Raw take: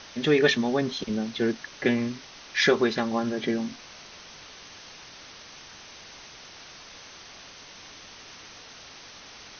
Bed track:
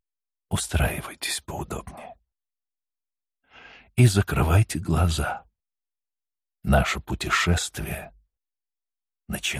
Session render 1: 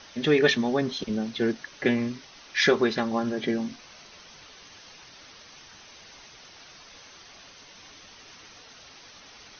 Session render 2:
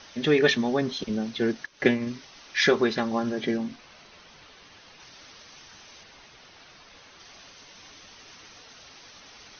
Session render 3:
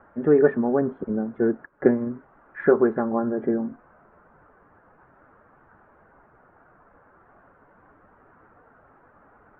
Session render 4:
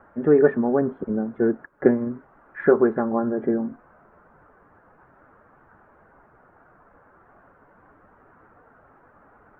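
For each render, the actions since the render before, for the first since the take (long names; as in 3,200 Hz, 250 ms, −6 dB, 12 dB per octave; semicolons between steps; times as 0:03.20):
broadband denoise 6 dB, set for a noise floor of −47 dBFS
0:01.64–0:02.07: transient designer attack +4 dB, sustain −11 dB; 0:03.57–0:05.00: high-frequency loss of the air 110 metres; 0:06.03–0:07.20: high-frequency loss of the air 100 metres
dynamic equaliser 380 Hz, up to +5 dB, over −37 dBFS, Q 0.75; elliptic low-pass filter 1,500 Hz, stop band 70 dB
level +1 dB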